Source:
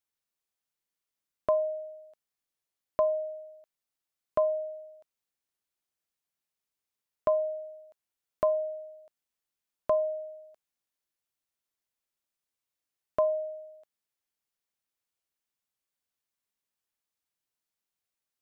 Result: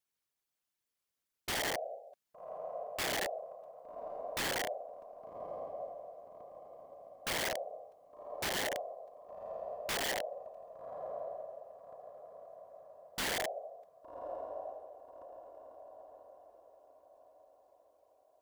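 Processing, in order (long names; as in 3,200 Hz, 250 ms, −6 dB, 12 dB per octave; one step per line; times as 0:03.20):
random phases in short frames
brickwall limiter −22.5 dBFS, peak gain reduction 9.5 dB
feedback delay with all-pass diffusion 1,170 ms, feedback 41%, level −8.5 dB
wrap-around overflow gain 30 dB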